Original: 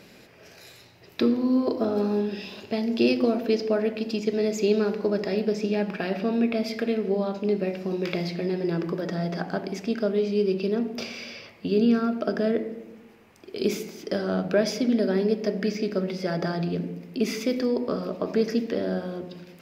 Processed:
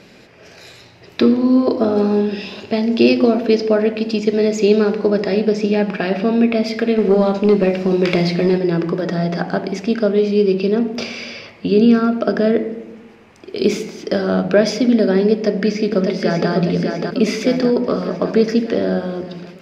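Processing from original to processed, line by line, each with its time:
0:06.98–0:08.58: leveller curve on the samples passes 1
0:15.32–0:16.50: delay throw 600 ms, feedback 60%, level −4.5 dB
whole clip: Bessel low-pass filter 6,700 Hz, order 2; automatic gain control gain up to 3 dB; level +6 dB

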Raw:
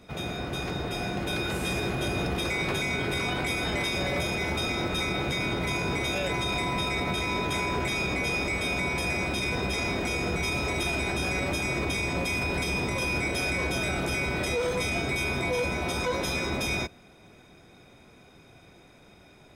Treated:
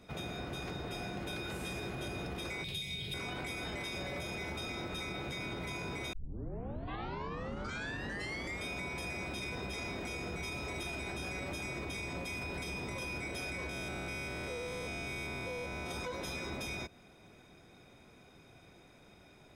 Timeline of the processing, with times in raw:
0:02.64–0:03.14: drawn EQ curve 180 Hz 0 dB, 270 Hz −14 dB, 430 Hz −9 dB, 1,400 Hz −20 dB, 3,500 Hz +10 dB, 5,800 Hz −2 dB, 11,000 Hz +4 dB
0:06.13: tape start 2.53 s
0:13.69–0:15.91: spectrum averaged block by block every 200 ms
whole clip: downward compressor, threshold −32 dBFS; level −5 dB

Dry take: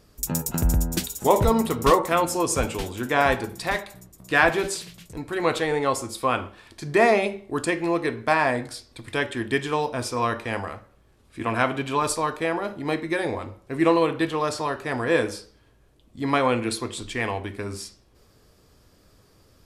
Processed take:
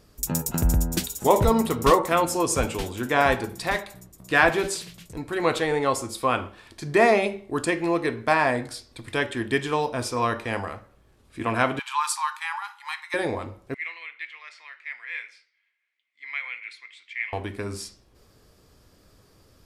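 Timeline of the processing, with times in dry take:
0:11.79–0:13.14: linear-phase brick-wall high-pass 790 Hz
0:13.74–0:17.33: four-pole ladder band-pass 2,200 Hz, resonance 85%

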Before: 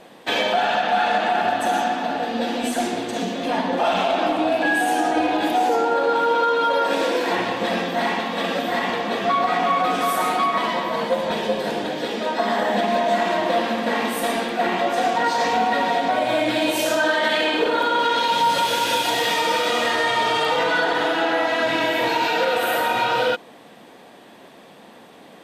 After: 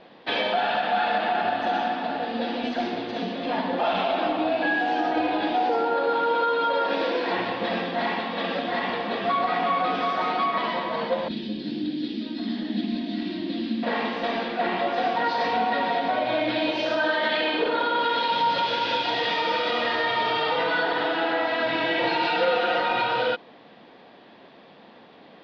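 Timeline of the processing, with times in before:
0:11.28–0:13.83: drawn EQ curve 180 Hz 0 dB, 300 Hz +10 dB, 460 Hz −18 dB, 1,000 Hz −23 dB, 4,400 Hz +1 dB, 7,700 Hz −9 dB
0:21.85–0:23.02: comb filter 5.7 ms
whole clip: Butterworth low-pass 4,900 Hz 48 dB per octave; level −4 dB

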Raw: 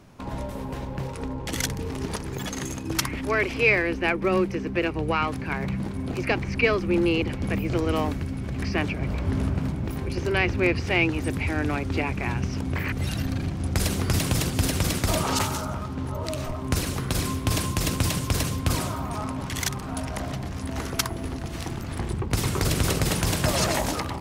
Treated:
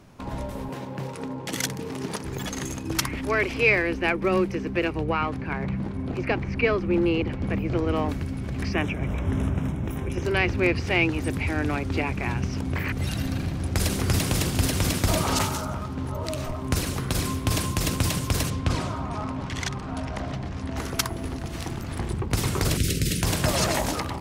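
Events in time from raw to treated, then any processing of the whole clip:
0:00.69–0:02.24: high-pass filter 120 Hz 24 dB per octave
0:05.03–0:08.09: low-pass filter 2,300 Hz 6 dB per octave
0:08.73–0:10.22: Butterworth band-reject 4,500 Hz, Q 2.6
0:12.98–0:15.49: echo with a time of its own for lows and highs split 2,400 Hz, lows 234 ms, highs 141 ms, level −10 dB
0:18.50–0:20.77: high-frequency loss of the air 84 metres
0:22.77–0:23.23: Butterworth band-reject 890 Hz, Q 0.52

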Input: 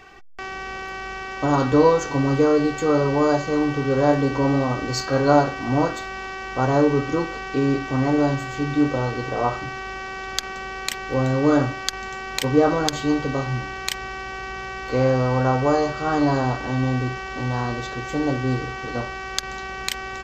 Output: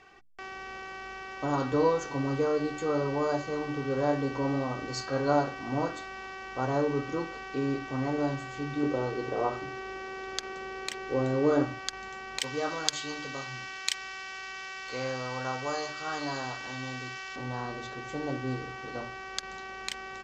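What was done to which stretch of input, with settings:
0:08.83–0:11.64: parametric band 390 Hz +7.5 dB 0.85 octaves
0:12.40–0:17.36: tilt shelving filter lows −8.5 dB, about 1,300 Hz
whole clip: low-pass filter 8,700 Hz; low-shelf EQ 69 Hz −7.5 dB; mains-hum notches 60/120/180/240/300 Hz; level −9 dB

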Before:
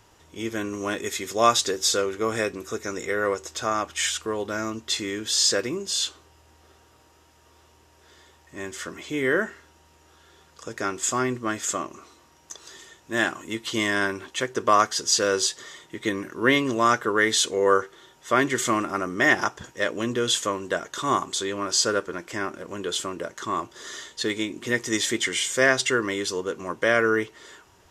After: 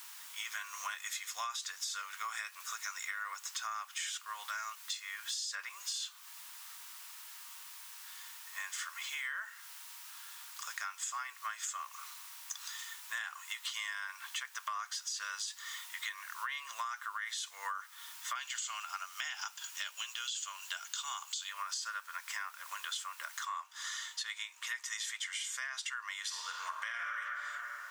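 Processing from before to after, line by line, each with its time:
0:04.75–0:05.70: multiband upward and downward expander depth 100%
0:18.35–0:21.49: loudspeaker in its box 420–8,200 Hz, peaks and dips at 550 Hz −4 dB, 1,100 Hz −8 dB, 1,900 Hz −9 dB, 2,900 Hz +9 dB, 4,500 Hz +7 dB, 7,100 Hz +9 dB
0:23.45: noise floor change −52 dB −67 dB
0:26.21–0:27.18: thrown reverb, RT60 1.9 s, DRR −0.5 dB
whole clip: Butterworth high-pass 990 Hz 36 dB per octave; brickwall limiter −17 dBFS; downward compressor 6 to 1, threshold −39 dBFS; level +1.5 dB

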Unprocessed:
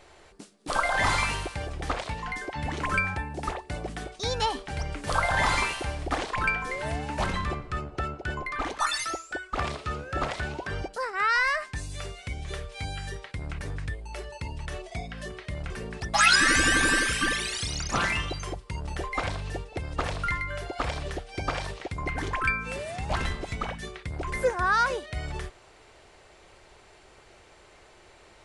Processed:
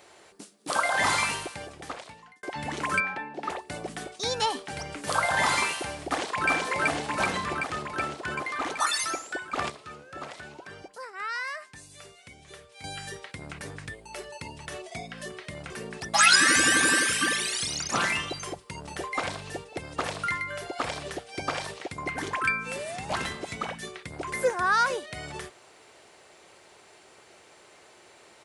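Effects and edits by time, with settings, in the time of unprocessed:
0:01.25–0:02.43: fade out
0:03.00–0:03.50: three-way crossover with the lows and the highs turned down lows −22 dB, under 190 Hz, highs −22 dB, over 4,300 Hz
0:06.03–0:06.49: delay throw 380 ms, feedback 75%, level −0.5 dB
0:09.70–0:12.84: clip gain −9.5 dB
whole clip: high-pass filter 160 Hz 12 dB per octave; high-shelf EQ 8,200 Hz +10 dB

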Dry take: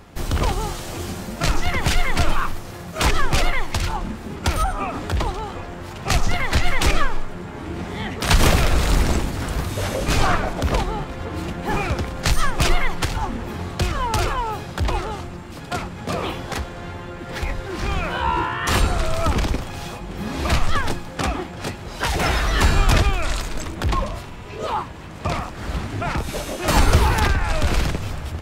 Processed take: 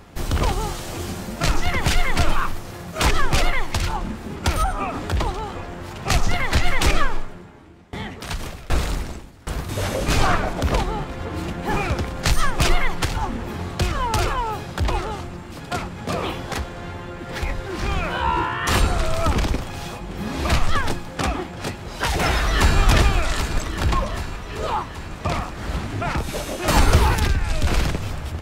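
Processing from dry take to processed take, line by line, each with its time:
0:07.16–0:09.69: tremolo with a ramp in dB decaying 1.3 Hz, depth 24 dB
0:22.39–0:22.80: delay throw 390 ms, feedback 75%, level −6.5 dB
0:27.15–0:27.67: parametric band 1,000 Hz −8 dB 2.2 octaves

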